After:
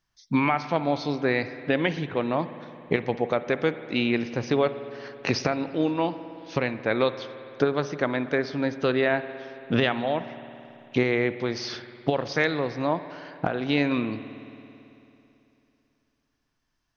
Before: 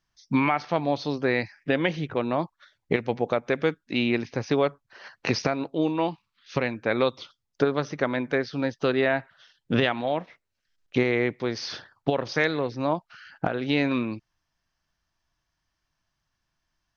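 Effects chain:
spring reverb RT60 3 s, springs 55 ms, chirp 35 ms, DRR 12 dB

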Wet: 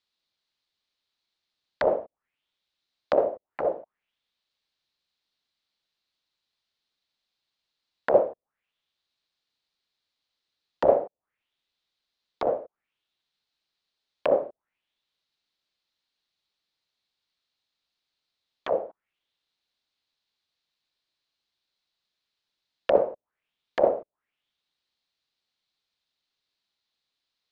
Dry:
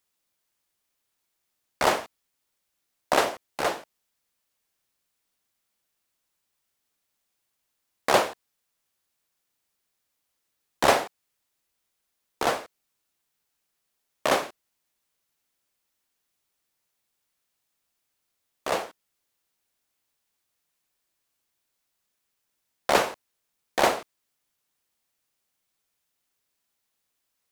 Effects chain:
envelope-controlled low-pass 560–4,100 Hz down, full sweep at −27 dBFS
level −5.5 dB

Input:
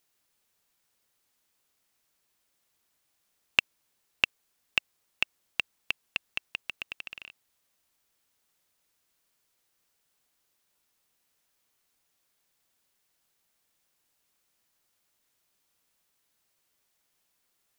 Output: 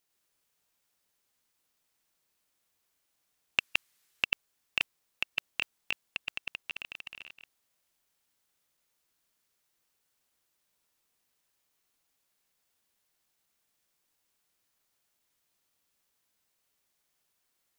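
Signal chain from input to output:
delay that plays each chunk backwards 102 ms, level −1 dB
0:03.59–0:04.24: noise in a band 1,200–16,000 Hz −69 dBFS
level −5 dB

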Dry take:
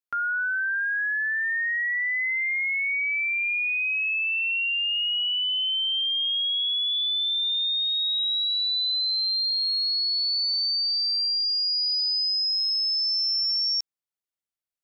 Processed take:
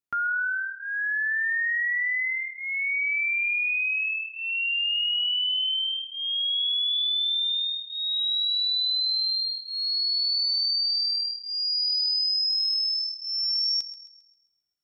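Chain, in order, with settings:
low-shelf EQ 320 Hz +9.5 dB
notch comb filter 530 Hz
feedback echo with a high-pass in the loop 133 ms, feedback 43%, level −14 dB

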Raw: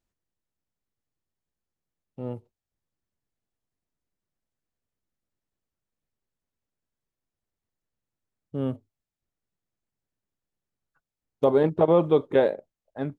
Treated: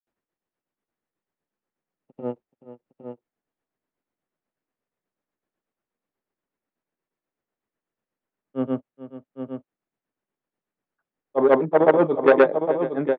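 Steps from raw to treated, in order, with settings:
granular cloud 171 ms, grains 8.2 per second, pitch spread up and down by 0 semitones
three-way crossover with the lows and the highs turned down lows −18 dB, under 190 Hz, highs −17 dB, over 2,600 Hz
on a send: multi-tap delay 429/810 ms −14.5/−8 dB
on the sum: saturating transformer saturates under 800 Hz
level +8.5 dB

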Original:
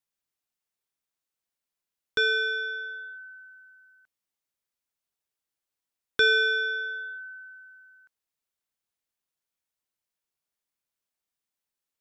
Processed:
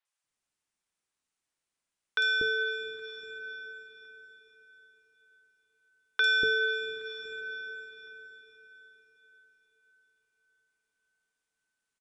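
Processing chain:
downsampling to 22,050 Hz
on a send: feedback delay with all-pass diffusion 472 ms, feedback 47%, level −13.5 dB
on the sum: downward compressor 1.5 to 1, threshold −41 dBFS, peak gain reduction 8 dB
mains-hum notches 50/100/150/200 Hz
three-band delay without the direct sound mids, highs, lows 50/240 ms, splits 580/4,400 Hz
level +4.5 dB

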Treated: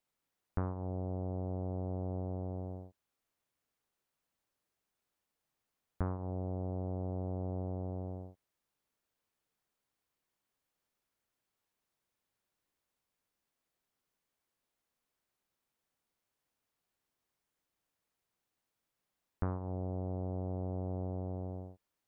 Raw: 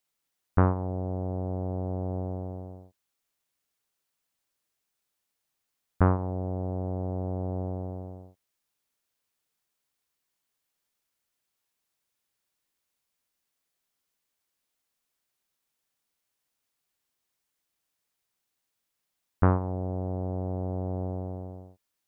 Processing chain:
high-shelf EQ 2,000 Hz −9.5 dB
downward compressor 4 to 1, threshold −37 dBFS, peak gain reduction 16.5 dB
level +1.5 dB

